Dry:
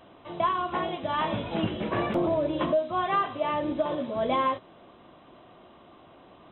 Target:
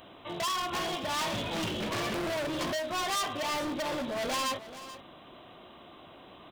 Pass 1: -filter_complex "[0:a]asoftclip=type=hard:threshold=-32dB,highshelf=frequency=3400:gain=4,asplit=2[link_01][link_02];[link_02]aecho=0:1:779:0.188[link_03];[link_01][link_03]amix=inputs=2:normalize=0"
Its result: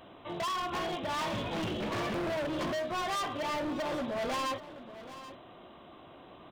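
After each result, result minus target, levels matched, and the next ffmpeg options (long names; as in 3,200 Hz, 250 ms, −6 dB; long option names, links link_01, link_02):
echo 347 ms late; 8,000 Hz band −6.5 dB
-filter_complex "[0:a]asoftclip=type=hard:threshold=-32dB,highshelf=frequency=3400:gain=4,asplit=2[link_01][link_02];[link_02]aecho=0:1:432:0.188[link_03];[link_01][link_03]amix=inputs=2:normalize=0"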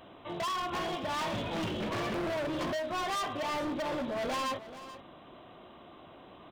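8,000 Hz band −6.5 dB
-filter_complex "[0:a]asoftclip=type=hard:threshold=-32dB,highshelf=frequency=3400:gain=14.5,asplit=2[link_01][link_02];[link_02]aecho=0:1:432:0.188[link_03];[link_01][link_03]amix=inputs=2:normalize=0"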